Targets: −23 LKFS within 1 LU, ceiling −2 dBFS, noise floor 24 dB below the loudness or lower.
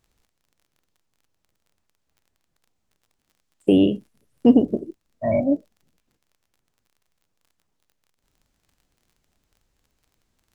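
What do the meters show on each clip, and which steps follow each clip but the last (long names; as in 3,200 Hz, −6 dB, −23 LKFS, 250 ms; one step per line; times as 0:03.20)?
crackle rate 30 per second; integrated loudness −20.5 LKFS; sample peak −4.0 dBFS; target loudness −23.0 LKFS
→ click removal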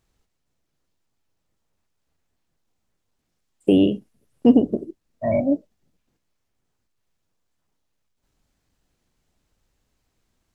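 crackle rate 0 per second; integrated loudness −20.5 LKFS; sample peak −4.0 dBFS; target loudness −23.0 LKFS
→ level −2.5 dB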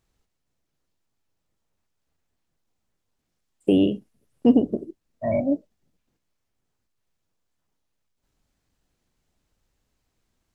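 integrated loudness −23.0 LKFS; sample peak −6.5 dBFS; background noise floor −78 dBFS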